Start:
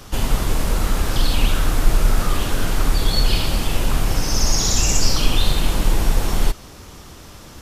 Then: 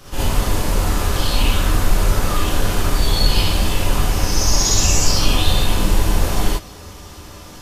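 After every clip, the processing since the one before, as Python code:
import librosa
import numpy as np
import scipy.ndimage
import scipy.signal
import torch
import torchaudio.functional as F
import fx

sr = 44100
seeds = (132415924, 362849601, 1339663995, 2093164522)

y = fx.rev_gated(x, sr, seeds[0], gate_ms=90, shape='rising', drr_db=-6.5)
y = y * 10.0 ** (-4.5 / 20.0)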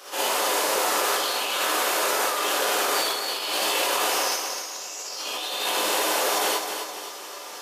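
y = scipy.signal.sosfilt(scipy.signal.butter(4, 430.0, 'highpass', fs=sr, output='sos'), x)
y = fx.over_compress(y, sr, threshold_db=-26.0, ratio=-0.5)
y = fx.echo_feedback(y, sr, ms=260, feedback_pct=42, wet_db=-7.5)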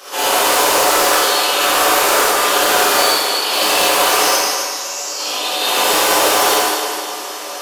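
y = 10.0 ** (-17.5 / 20.0) * (np.abs((x / 10.0 ** (-17.5 / 20.0) + 3.0) % 4.0 - 2.0) - 1.0)
y = fx.rev_gated(y, sr, seeds[1], gate_ms=220, shape='flat', drr_db=-3.0)
y = y * 10.0 ** (6.0 / 20.0)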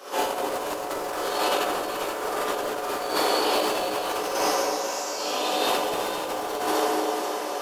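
y = fx.tilt_shelf(x, sr, db=6.5, hz=1200.0)
y = fx.over_compress(y, sr, threshold_db=-17.0, ratio=-0.5)
y = fx.echo_alternate(y, sr, ms=243, hz=800.0, feedback_pct=54, wet_db=-4.5)
y = y * 10.0 ** (-9.0 / 20.0)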